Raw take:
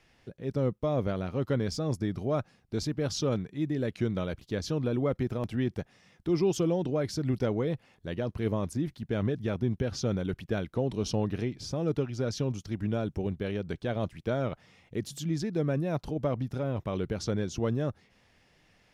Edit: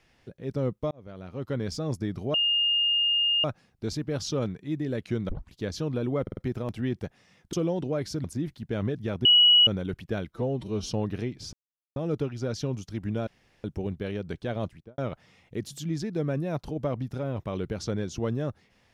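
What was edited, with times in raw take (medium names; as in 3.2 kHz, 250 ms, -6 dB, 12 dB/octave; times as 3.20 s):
0.91–1.73 s: fade in
2.34 s: add tone 2.83 kHz -21 dBFS 1.10 s
4.19 s: tape start 0.25 s
5.12 s: stutter 0.05 s, 4 plays
6.28–6.56 s: delete
7.27–8.64 s: delete
9.65–10.07 s: bleep 2.92 kHz -14 dBFS
10.71–11.11 s: stretch 1.5×
11.73 s: insert silence 0.43 s
13.04 s: insert room tone 0.37 s
14.02–14.38 s: studio fade out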